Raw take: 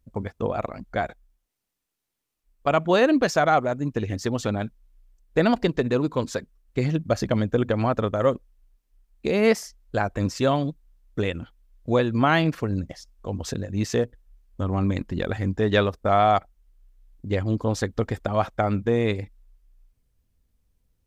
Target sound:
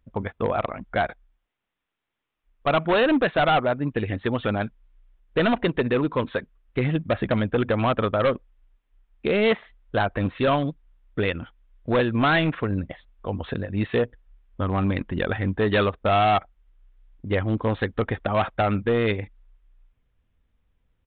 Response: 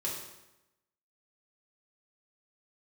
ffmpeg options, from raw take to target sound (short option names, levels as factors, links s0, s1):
-af "equalizer=f=1500:w=0.51:g=6.5,aresample=8000,asoftclip=type=hard:threshold=0.158,aresample=44100"